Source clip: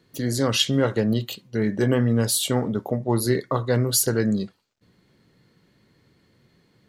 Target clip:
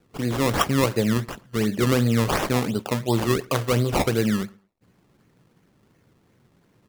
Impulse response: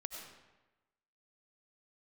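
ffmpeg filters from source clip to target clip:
-filter_complex "[0:a]acrusher=samples=20:mix=1:aa=0.000001:lfo=1:lforange=20:lforate=2.8,asplit=2[s0][s1];[s1]adelay=112,lowpass=f=3200:p=1,volume=0.0631,asplit=2[s2][s3];[s3]adelay=112,lowpass=f=3200:p=1,volume=0.24[s4];[s0][s2][s4]amix=inputs=3:normalize=0"

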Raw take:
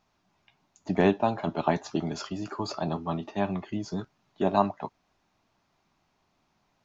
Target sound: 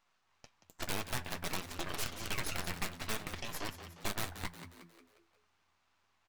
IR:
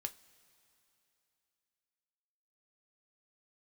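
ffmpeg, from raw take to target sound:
-filter_complex "[0:a]highpass=1100,highshelf=f=2700:g=-10.5,acompressor=threshold=0.00398:ratio=4,aeval=exprs='0.0299*(cos(1*acos(clip(val(0)/0.0299,-1,1)))-cos(1*PI/2))+0.0133*(cos(6*acos(clip(val(0)/0.0299,-1,1)))-cos(6*PI/2))+0.00596*(cos(7*acos(clip(val(0)/0.0299,-1,1)))-cos(7*PI/2))+0.000841*(cos(8*acos(clip(val(0)/0.0299,-1,1)))-cos(8*PI/2))':c=same,aeval=exprs='(mod(84.1*val(0)+1,2)-1)/84.1':c=same,flanger=delay=5.7:depth=6.7:regen=-48:speed=0.54:shape=triangular,aeval=exprs='max(val(0),0)':c=same,asplit=6[s0][s1][s2][s3][s4][s5];[s1]adelay=195,afreqshift=77,volume=0.282[s6];[s2]adelay=390,afreqshift=154,volume=0.138[s7];[s3]adelay=585,afreqshift=231,volume=0.0676[s8];[s4]adelay=780,afreqshift=308,volume=0.0331[s9];[s5]adelay=975,afreqshift=385,volume=0.0162[s10];[s0][s6][s7][s8][s9][s10]amix=inputs=6:normalize=0,asplit=2[s11][s12];[1:a]atrim=start_sample=2205[s13];[s12][s13]afir=irnorm=-1:irlink=0,volume=0.447[s14];[s11][s14]amix=inputs=2:normalize=0,asetrate=48000,aresample=44100,volume=6.31"

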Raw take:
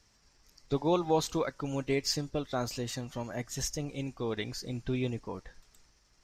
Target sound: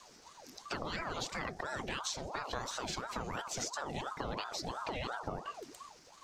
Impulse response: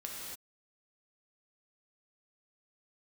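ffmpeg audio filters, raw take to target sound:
-filter_complex "[0:a]equalizer=f=125:t=o:w=0.33:g=10,equalizer=f=250:t=o:w=0.33:g=-4,equalizer=f=500:t=o:w=0.33:g=6,acrossover=split=7300[s0][s1];[s1]acompressor=threshold=0.00126:ratio=4:attack=1:release=60[s2];[s0][s2]amix=inputs=2:normalize=0,bandreject=f=50:t=h:w=6,bandreject=f=100:t=h:w=6,bandreject=f=150:t=h:w=6,bandreject=f=200:t=h:w=6,bandreject=f=250:t=h:w=6,bandreject=f=300:t=h:w=6,bandreject=f=350:t=h:w=6,bandreject=f=400:t=h:w=6,bandreject=f=450:t=h:w=6,bandreject=f=500:t=h:w=6,afreqshift=-24,afftfilt=real='re*lt(hypot(re,im),0.141)':imag='im*lt(hypot(re,im),0.141)':win_size=1024:overlap=0.75,acompressor=threshold=0.00562:ratio=6,aeval=exprs='val(0)*sin(2*PI*710*n/s+710*0.65/2.9*sin(2*PI*2.9*n/s))':c=same,volume=3.76"

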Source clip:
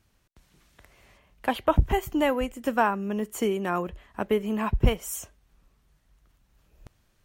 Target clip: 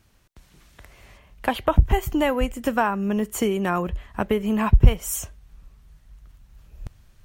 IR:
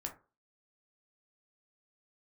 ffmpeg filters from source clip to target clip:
-af "acompressor=threshold=0.0501:ratio=2,asubboost=boost=2.5:cutoff=170,volume=2.11"

